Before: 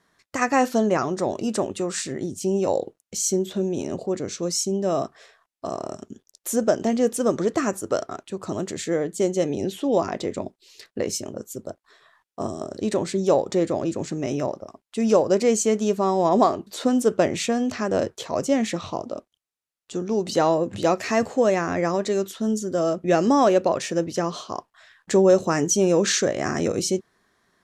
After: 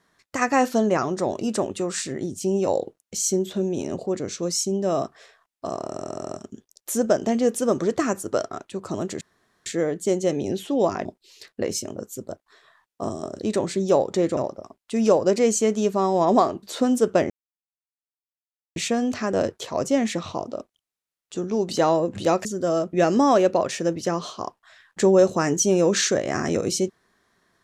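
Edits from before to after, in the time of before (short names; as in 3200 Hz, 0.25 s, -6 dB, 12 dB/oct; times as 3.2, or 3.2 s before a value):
5.89 stutter 0.07 s, 7 plays
8.79 insert room tone 0.45 s
10.18–10.43 cut
13.75–14.41 cut
17.34 insert silence 1.46 s
21.03–22.56 cut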